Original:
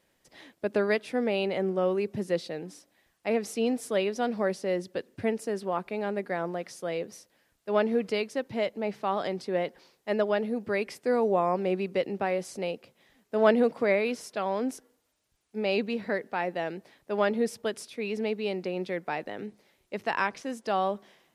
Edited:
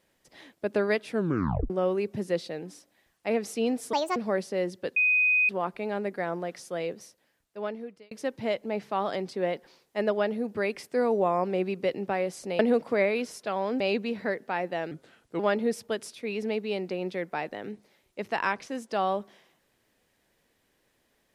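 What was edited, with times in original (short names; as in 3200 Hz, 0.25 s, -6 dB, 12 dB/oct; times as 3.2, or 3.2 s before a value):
1.1 tape stop 0.60 s
3.93–4.28 speed 151%
5.08–5.61 bleep 2500 Hz -19.5 dBFS
7.01–8.23 fade out
12.71–13.49 cut
14.7–15.64 cut
16.75–17.14 speed 81%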